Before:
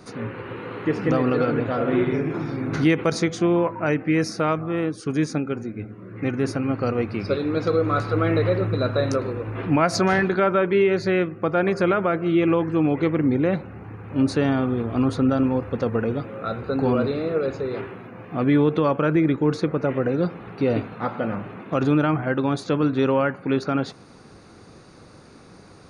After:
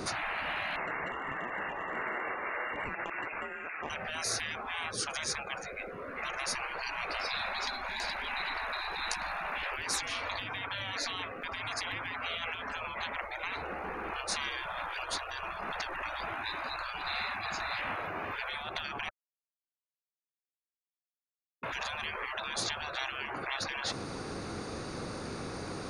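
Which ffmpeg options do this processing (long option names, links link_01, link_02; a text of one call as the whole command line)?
ffmpeg -i in.wav -filter_complex "[0:a]asettb=1/sr,asplit=3[link_01][link_02][link_03];[link_01]atrim=end=0.764[link_04];[link_02]atrim=start=0.76:end=3.9,asetpts=PTS-STARTPTS,afade=type=in:duration=0.004:curve=qsin,afade=type=out:start_time=3.136:duration=0.004:curve=qsin,lowpass=frequency=2400:width_type=q:width=0.5098,lowpass=frequency=2400:width_type=q:width=0.6013,lowpass=frequency=2400:width_type=q:width=0.9,lowpass=frequency=2400:width_type=q:width=2.563,afreqshift=-2800[link_05];[link_03]atrim=start=3.896[link_06];[link_04][link_05]acrossfade=duration=0.004:curve1=hsin:curve2=qsin[link_07];[link_07][link_06]acrossfade=duration=0.004:curve1=qsin:curve2=hsin,asplit=3[link_08][link_09][link_10];[link_08]atrim=end=19.09,asetpts=PTS-STARTPTS,afade=type=out:start_time=19.086:duration=0.004:curve=hsin[link_11];[link_09]atrim=start=19.09:end=21.63,asetpts=PTS-STARTPTS,volume=0[link_12];[link_10]atrim=start=21.63,asetpts=PTS-STARTPTS,afade=type=in:duration=0.004:curve=hsin[link_13];[link_11][link_12][link_13]concat=n=3:v=0:a=1,acompressor=threshold=-22dB:ratio=8,afftfilt=real='re*lt(hypot(re,im),0.0316)':imag='im*lt(hypot(re,im),0.0316)':win_size=1024:overlap=0.75,volume=9dB" out.wav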